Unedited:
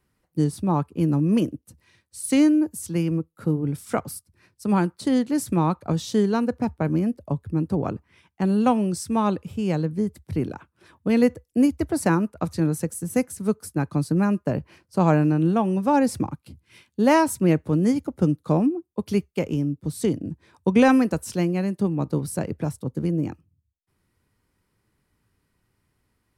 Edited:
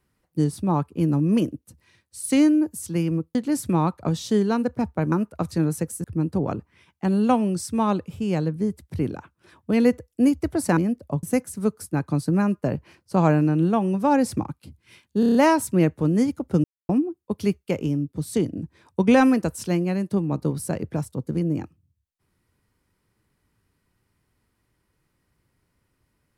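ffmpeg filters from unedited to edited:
-filter_complex "[0:a]asplit=13[s0][s1][s2][s3][s4][s5][s6][s7][s8][s9][s10][s11][s12];[s0]atrim=end=3.352[s13];[s1]atrim=start=5.178:end=6.952[s14];[s2]atrim=start=12.138:end=13.062[s15];[s3]atrim=start=7.408:end=12.142[s16];[s4]atrim=start=6.948:end=7.412[s17];[s5]atrim=start=13.058:end=17.062[s18];[s6]atrim=start=17.028:end=17.062[s19];[s7]atrim=start=17.028:end=17.062[s20];[s8]atrim=start=17.028:end=17.062[s21];[s9]atrim=start=17.028:end=17.062[s22];[s10]atrim=start=17.028:end=18.32,asetpts=PTS-STARTPTS,afade=t=out:st=1.288:d=0.004:c=hsin[s23];[s11]atrim=start=18.32:end=18.57,asetpts=PTS-STARTPTS,volume=0[s24];[s12]atrim=start=18.57,asetpts=PTS-STARTPTS,afade=t=in:d=0.004:c=hsin[s25];[s13][s14]acrossfade=d=0.004:c1=hsin:c2=hsin[s26];[s26][s15]acrossfade=d=0.004:c1=hsin:c2=hsin[s27];[s27][s16]acrossfade=d=0.004:c1=hsin:c2=hsin[s28];[s28][s17]acrossfade=d=0.004:c1=hsin:c2=hsin[s29];[s29][s18]acrossfade=d=0.004:c1=hsin:c2=hsin[s30];[s30][s19]acrossfade=d=0.004:c1=hsin:c2=hsin[s31];[s31][s20]acrossfade=d=0.004:c1=hsin:c2=hsin[s32];[s32][s21]acrossfade=d=0.004:c1=hsin:c2=hsin[s33];[s33][s22]acrossfade=d=0.004:c1=hsin:c2=hsin[s34];[s23][s24][s25]concat=n=3:v=0:a=1[s35];[s34][s35]acrossfade=d=0.004:c1=hsin:c2=hsin"

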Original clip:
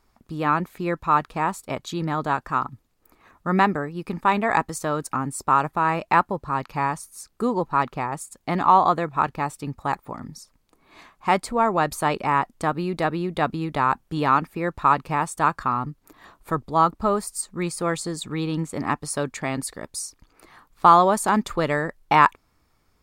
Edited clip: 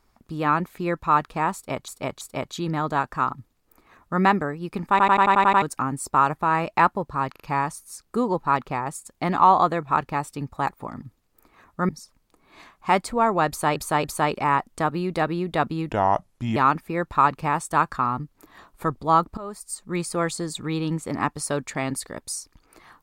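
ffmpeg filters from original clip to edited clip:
-filter_complex "[0:a]asplit=20[s0][s1][s2][s3][s4][s5][s6][s7][s8][s9][s10][s11][s12][s13][s14][s15][s16][s17][s18][s19];[s0]atrim=end=1.882[s20];[s1]atrim=start=1.548:end=1.882[s21];[s2]atrim=start=1.548:end=4.332[s22];[s3]atrim=start=4.238:end=4.332[s23];[s4]atrim=start=4.238:end=4.332[s24];[s5]atrim=start=4.238:end=4.332[s25];[s6]atrim=start=4.238:end=4.332[s26];[s7]atrim=start=4.238:end=4.332[s27];[s8]atrim=start=4.238:end=4.332[s28];[s9]atrim=start=4.238:end=4.332[s29];[s10]atrim=start=4.958:end=6.702[s30];[s11]atrim=start=6.658:end=6.702[s31];[s12]atrim=start=6.658:end=10.282[s32];[s13]atrim=start=2.688:end=3.562[s33];[s14]atrim=start=10.278:end=12.152[s34];[s15]atrim=start=11.868:end=12.152[s35];[s16]atrim=start=11.868:end=13.744[s36];[s17]atrim=start=13.74:end=14.23,asetpts=PTS-STARTPTS,asetrate=33075,aresample=44100[s37];[s18]atrim=start=14.226:end=17.04,asetpts=PTS-STARTPTS,afade=t=out:st=2.81:d=0.004:c=hsin:silence=0.112202[s38];[s19]atrim=start=17.04,asetpts=PTS-STARTPTS,afade=t=in:d=0.61:silence=0.112202[s39];[s20][s21]acrossfade=d=0.004:c1=hsin:c2=hsin[s40];[s40][s22]acrossfade=d=0.004:c1=hsin:c2=hsin[s41];[s41][s23]acrossfade=d=0.004:c1=hsin:c2=hsin[s42];[s42][s24]acrossfade=d=0.004:c1=hsin:c2=hsin[s43];[s43][s25]acrossfade=d=0.004:c1=hsin:c2=hsin[s44];[s44][s26]acrossfade=d=0.004:c1=hsin:c2=hsin[s45];[s45][s27]acrossfade=d=0.004:c1=hsin:c2=hsin[s46];[s46][s28]acrossfade=d=0.004:c1=hsin:c2=hsin[s47];[s47][s29]acrossfade=d=0.004:c1=hsin:c2=hsin[s48];[s48][s30]acrossfade=d=0.004:c1=hsin:c2=hsin[s49];[s49][s31]acrossfade=d=0.004:c1=hsin:c2=hsin[s50];[s50][s32]acrossfade=d=0.004:c1=hsin:c2=hsin[s51];[s51][s33]acrossfade=d=0.004:c1=hsin:c2=hsin[s52];[s52][s34]acrossfade=d=0.004:c1=hsin:c2=hsin[s53];[s53][s35]acrossfade=d=0.004:c1=hsin:c2=hsin[s54];[s54][s36]acrossfade=d=0.004:c1=hsin:c2=hsin[s55];[s55][s37]acrossfade=d=0.004:c1=hsin:c2=hsin[s56];[s38][s39]concat=n=2:v=0:a=1[s57];[s56][s57]acrossfade=d=0.004:c1=hsin:c2=hsin"

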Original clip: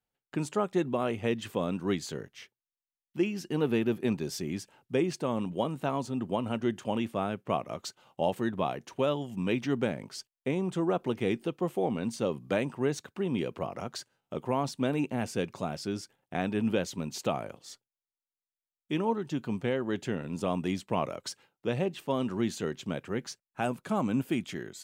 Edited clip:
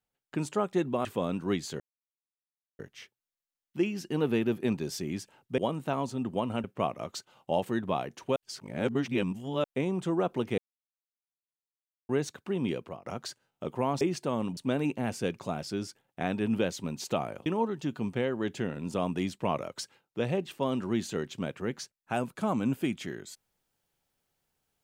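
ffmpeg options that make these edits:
-filter_complex "[0:a]asplit=13[s0][s1][s2][s3][s4][s5][s6][s7][s8][s9][s10][s11][s12];[s0]atrim=end=1.052[s13];[s1]atrim=start=1.438:end=2.19,asetpts=PTS-STARTPTS,afade=t=out:st=0.748:d=0.004:c=hsin,apad=pad_dur=0.99[s14];[s2]atrim=start=2.19:end=4.982,asetpts=PTS-STARTPTS,afade=t=in:d=0.004:c=hsin[s15];[s3]atrim=start=5.538:end=6.602[s16];[s4]atrim=start=7.338:end=9.062[s17];[s5]atrim=start=9.058:end=10.342,asetpts=PTS-STARTPTS,areverse[s18];[s6]atrim=start=10.338:end=11.28,asetpts=PTS-STARTPTS,afade=t=out:st=0.938:d=0.004:c=hsin[s19];[s7]atrim=start=11.28:end=12.79,asetpts=PTS-STARTPTS,volume=0[s20];[s8]atrim=start=12.79:end=13.76,asetpts=PTS-STARTPTS,afade=t=in:d=0.004:c=hsin,afade=t=out:st=0.62:d=0.35:silence=0.105925[s21];[s9]atrim=start=13.76:end=14.712,asetpts=PTS-STARTPTS,afade=t=in:d=0.004:c=hsin:silence=0.105925[s22];[s10]atrim=start=4.978:end=5.542[s23];[s11]atrim=start=14.708:end=17.602[s24];[s12]atrim=start=18.938[s25];[s14][s15]concat=n=2:v=0:a=1[s26];[s13][s26]acrossfade=d=0.004:c1=hsin:c2=hsin[s27];[s27][s16]acrossfade=d=0.004:c1=hsin:c2=hsin[s28];[s28][s17]acrossfade=d=0.004:c1=hsin:c2=hsin[s29];[s29][s18]acrossfade=d=0.004:c1=hsin:c2=hsin[s30];[s19][s20][s21][s22]concat=n=4:v=0:a=1[s31];[s30][s31]acrossfade=d=0.004:c1=hsin:c2=hsin[s32];[s32][s23]acrossfade=d=0.004:c1=hsin:c2=hsin[s33];[s33][s24]acrossfade=d=0.004:c1=hsin:c2=hsin[s34];[s34][s25]acrossfade=d=0.004:c1=hsin:c2=hsin"

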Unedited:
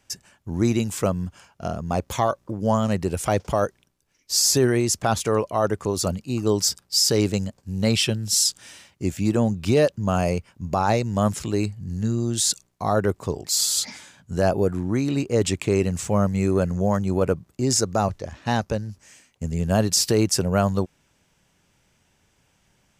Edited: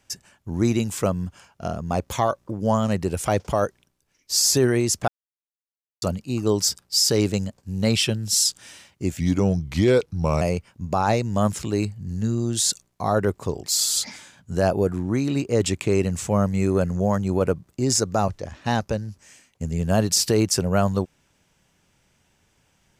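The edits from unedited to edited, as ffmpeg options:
-filter_complex "[0:a]asplit=5[s0][s1][s2][s3][s4];[s0]atrim=end=5.08,asetpts=PTS-STARTPTS,afade=t=out:st=5.076:d=0.004:c=hsin[s5];[s1]atrim=start=5.08:end=6.02,asetpts=PTS-STARTPTS,volume=0[s6];[s2]atrim=start=6.02:end=9.204,asetpts=PTS-STARTPTS,afade=t=in:d=0.004:c=hsin[s7];[s3]atrim=start=9.2:end=10.22,asetpts=PTS-STARTPTS,asetrate=37044,aresample=44100[s8];[s4]atrim=start=10.216[s9];[s5][s6][s7]concat=n=3:v=0:a=1[s10];[s10][s8]acrossfade=d=0.004:c1=hsin:c2=hsin[s11];[s11][s9]acrossfade=d=0.004:c1=hsin:c2=hsin"

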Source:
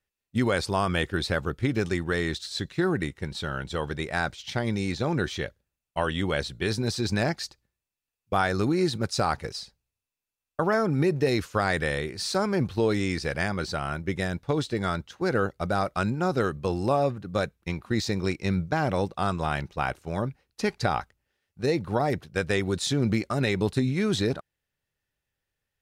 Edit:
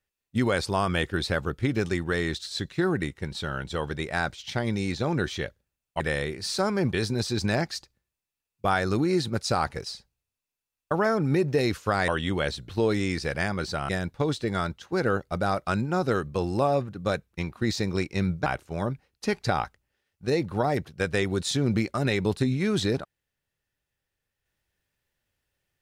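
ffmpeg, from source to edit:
-filter_complex "[0:a]asplit=7[s0][s1][s2][s3][s4][s5][s6];[s0]atrim=end=6.002[s7];[s1]atrim=start=11.758:end=12.692[s8];[s2]atrim=start=6.608:end=11.762[s9];[s3]atrim=start=5.998:end=6.612[s10];[s4]atrim=start=12.688:end=13.892[s11];[s5]atrim=start=14.178:end=18.752[s12];[s6]atrim=start=19.818[s13];[s7][s8]acrossfade=d=0.004:c1=hsin:c2=hsin[s14];[s14][s9]acrossfade=d=0.004:c1=hsin:c2=hsin[s15];[s15][s10]acrossfade=d=0.004:c1=hsin:c2=hsin[s16];[s16][s11]acrossfade=d=0.004:c1=hsin:c2=hsin[s17];[s17][s12]acrossfade=d=0.004:c1=hsin:c2=hsin[s18];[s18][s13]acrossfade=d=0.004:c1=hsin:c2=hsin"

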